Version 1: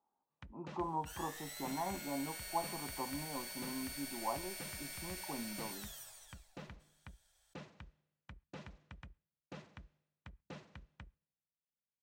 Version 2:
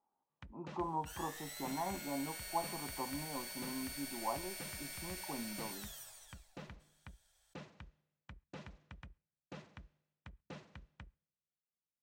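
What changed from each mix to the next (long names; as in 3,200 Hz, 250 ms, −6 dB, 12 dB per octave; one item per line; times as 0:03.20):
nothing changed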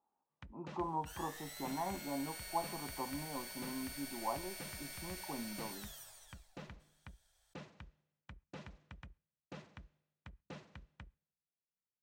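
second sound: send off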